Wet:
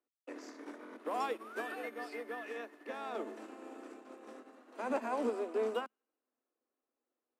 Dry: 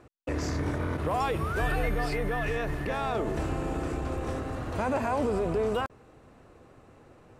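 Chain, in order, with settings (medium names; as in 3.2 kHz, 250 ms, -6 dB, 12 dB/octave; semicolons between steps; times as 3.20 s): Chebyshev high-pass 220 Hz, order 10; on a send: feedback echo behind a high-pass 88 ms, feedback 69%, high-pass 1.6 kHz, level -21 dB; on the sum: upward expansion 2.5:1, over -47 dBFS; trim -3.5 dB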